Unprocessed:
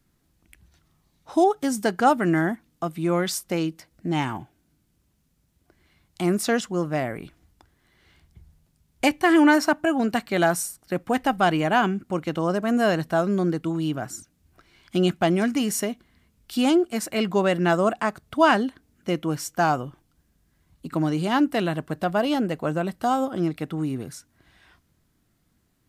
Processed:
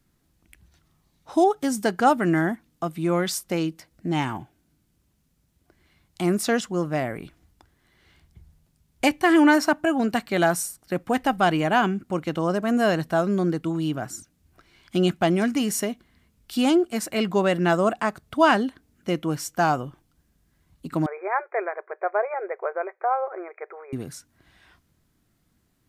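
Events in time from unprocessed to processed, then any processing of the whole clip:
21.06–23.93 brick-wall FIR band-pass 360–2500 Hz

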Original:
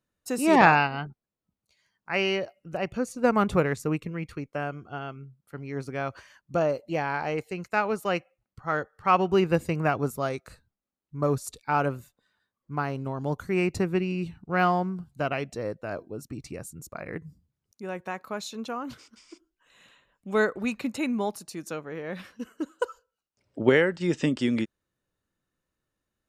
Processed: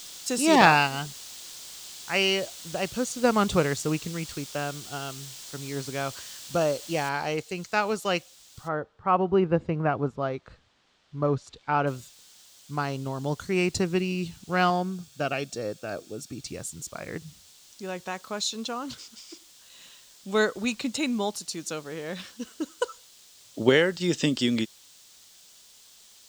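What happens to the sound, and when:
7.09 noise floor step -48 dB -59 dB
8.67–11.86 LPF 1100 Hz -> 2600 Hz
14.7–16.46 notch comb 1000 Hz
whole clip: band shelf 5000 Hz +10 dB

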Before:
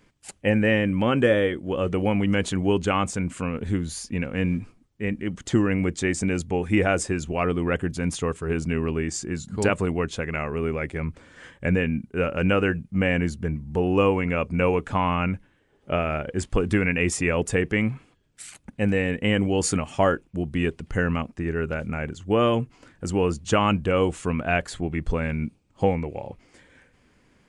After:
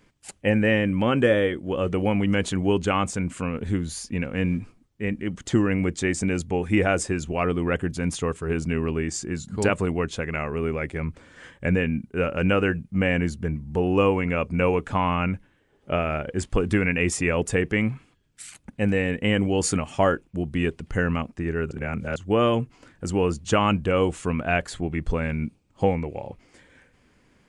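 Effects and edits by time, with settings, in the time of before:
17.94–18.58 bell 550 Hz -4.5 dB 1.5 oct
21.71–22.16 reverse

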